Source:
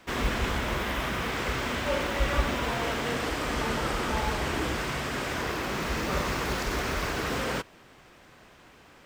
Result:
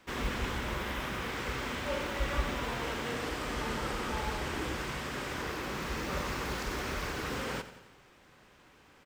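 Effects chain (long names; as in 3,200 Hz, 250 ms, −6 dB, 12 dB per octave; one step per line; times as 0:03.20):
notch filter 670 Hz, Q 12
repeating echo 89 ms, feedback 57%, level −13.5 dB
level −6 dB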